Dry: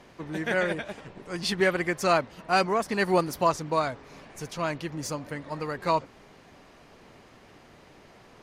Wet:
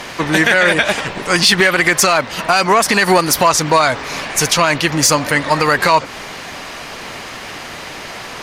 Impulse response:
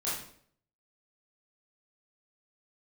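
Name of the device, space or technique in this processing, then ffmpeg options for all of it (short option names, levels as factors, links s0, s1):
mastering chain: -af "equalizer=f=400:t=o:w=0.27:g=-2,acompressor=threshold=0.0398:ratio=2.5,asoftclip=type=tanh:threshold=0.0944,tiltshelf=f=780:g=-6.5,alimiter=level_in=15.8:limit=0.891:release=50:level=0:latency=1,volume=0.891"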